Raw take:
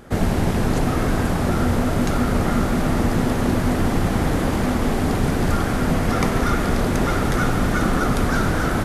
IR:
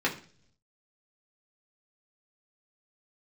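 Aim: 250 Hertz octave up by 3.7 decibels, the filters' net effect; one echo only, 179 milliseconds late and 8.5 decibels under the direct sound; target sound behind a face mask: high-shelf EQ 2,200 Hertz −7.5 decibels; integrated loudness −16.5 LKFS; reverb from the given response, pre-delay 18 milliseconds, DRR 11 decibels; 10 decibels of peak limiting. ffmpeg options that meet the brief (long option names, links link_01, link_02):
-filter_complex "[0:a]equalizer=frequency=250:width_type=o:gain=4.5,alimiter=limit=-13.5dB:level=0:latency=1,aecho=1:1:179:0.376,asplit=2[link_01][link_02];[1:a]atrim=start_sample=2205,adelay=18[link_03];[link_02][link_03]afir=irnorm=-1:irlink=0,volume=-21.5dB[link_04];[link_01][link_04]amix=inputs=2:normalize=0,highshelf=frequency=2200:gain=-7.5,volume=6dB"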